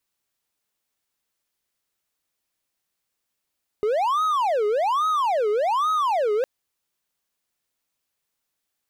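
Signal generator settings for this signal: siren wail 414–1270 Hz 1.2 per s triangle -17 dBFS 2.61 s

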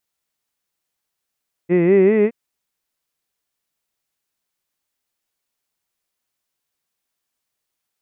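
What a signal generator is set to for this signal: formant-synthesis vowel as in hid, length 0.62 s, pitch 166 Hz, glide +5.5 st, vibrato 5.1 Hz, vibrato depth 1.05 st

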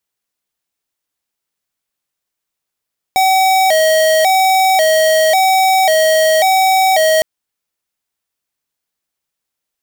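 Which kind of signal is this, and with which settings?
siren hi-lo 633–760 Hz 0.92 per s square -11 dBFS 4.06 s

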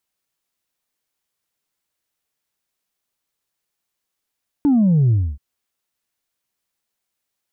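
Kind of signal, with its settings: sub drop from 300 Hz, over 0.73 s, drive 1 dB, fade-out 0.27 s, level -12 dB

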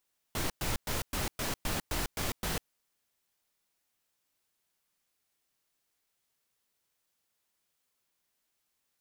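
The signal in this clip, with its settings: noise bursts pink, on 0.15 s, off 0.11 s, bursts 9, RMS -32.5 dBFS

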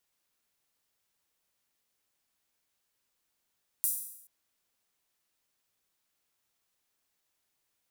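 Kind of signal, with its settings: open hi-hat length 0.43 s, high-pass 9.8 kHz, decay 0.77 s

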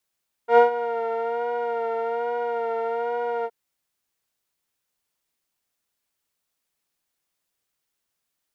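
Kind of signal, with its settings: synth patch with vibrato A#4, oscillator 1 saw, oscillator 2 saw, interval +7 st, detune 19 cents, oscillator 2 level -5.5 dB, sub -28.5 dB, noise -25 dB, filter lowpass, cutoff 890 Hz, Q 1, filter envelope 0.5 oct, filter decay 0.10 s, attack 98 ms, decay 0.12 s, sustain -14.5 dB, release 0.05 s, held 2.97 s, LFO 1.2 Hz, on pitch 39 cents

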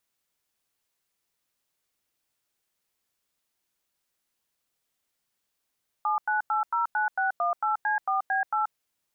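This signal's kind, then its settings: DTMF "79809618C4B8", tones 131 ms, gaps 94 ms, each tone -25.5 dBFS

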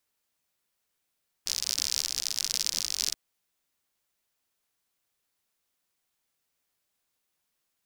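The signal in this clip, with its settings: rain from filtered ticks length 1.68 s, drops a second 72, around 5.2 kHz, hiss -23 dB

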